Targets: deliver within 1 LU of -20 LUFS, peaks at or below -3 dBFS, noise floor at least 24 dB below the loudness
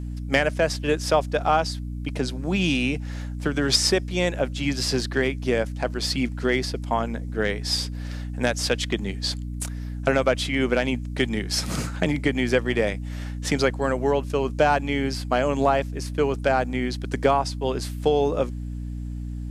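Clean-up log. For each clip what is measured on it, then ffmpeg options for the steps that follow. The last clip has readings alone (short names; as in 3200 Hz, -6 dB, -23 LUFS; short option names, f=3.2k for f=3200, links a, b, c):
hum 60 Hz; harmonics up to 300 Hz; hum level -29 dBFS; loudness -24.5 LUFS; peak -6.0 dBFS; loudness target -20.0 LUFS
-> -af "bandreject=f=60:t=h:w=4,bandreject=f=120:t=h:w=4,bandreject=f=180:t=h:w=4,bandreject=f=240:t=h:w=4,bandreject=f=300:t=h:w=4"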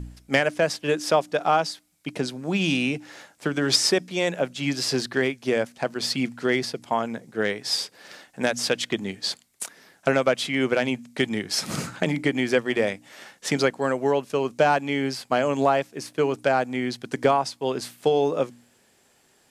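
hum none; loudness -24.5 LUFS; peak -5.5 dBFS; loudness target -20.0 LUFS
-> -af "volume=4.5dB,alimiter=limit=-3dB:level=0:latency=1"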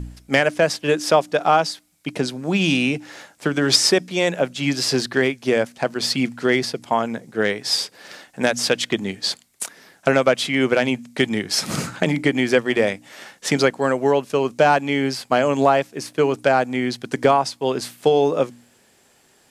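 loudness -20.0 LUFS; peak -3.0 dBFS; noise floor -57 dBFS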